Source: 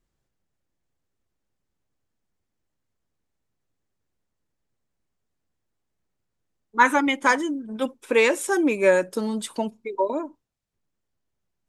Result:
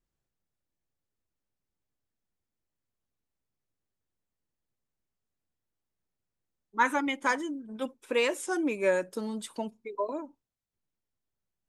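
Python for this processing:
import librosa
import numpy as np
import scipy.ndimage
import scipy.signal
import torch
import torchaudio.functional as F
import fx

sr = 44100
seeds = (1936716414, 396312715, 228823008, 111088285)

y = fx.record_warp(x, sr, rpm=33.33, depth_cents=100.0)
y = F.gain(torch.from_numpy(y), -8.0).numpy()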